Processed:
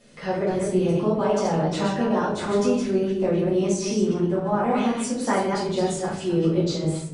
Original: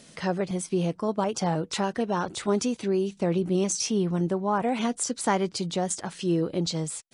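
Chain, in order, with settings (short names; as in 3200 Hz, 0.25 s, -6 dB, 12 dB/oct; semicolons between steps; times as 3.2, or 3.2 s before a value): reverse delay 0.129 s, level -4 dB; high shelf 3700 Hz -7.5 dB; shoebox room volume 80 m³, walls mixed, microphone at 2 m; AGC gain up to 6 dB; gain -8 dB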